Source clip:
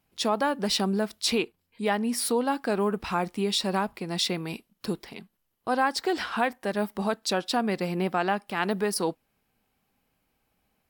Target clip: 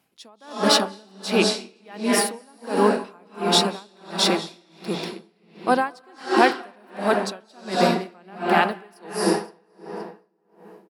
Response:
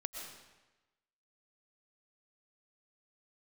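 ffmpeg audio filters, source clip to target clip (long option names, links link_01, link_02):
-filter_complex "[0:a]highpass=170,asplit=2[link_01][link_02];[link_02]adelay=520,lowpass=frequency=2200:poles=1,volume=-9.5dB,asplit=2[link_03][link_04];[link_04]adelay=520,lowpass=frequency=2200:poles=1,volume=0.37,asplit=2[link_05][link_06];[link_06]adelay=520,lowpass=frequency=2200:poles=1,volume=0.37,asplit=2[link_07][link_08];[link_08]adelay=520,lowpass=frequency=2200:poles=1,volume=0.37[link_09];[link_01][link_03][link_05][link_07][link_09]amix=inputs=5:normalize=0[link_10];[1:a]atrim=start_sample=2205,asetrate=23814,aresample=44100[link_11];[link_10][link_11]afir=irnorm=-1:irlink=0,aeval=exprs='val(0)*pow(10,-35*(0.5-0.5*cos(2*PI*1.4*n/s))/20)':channel_layout=same,volume=7.5dB"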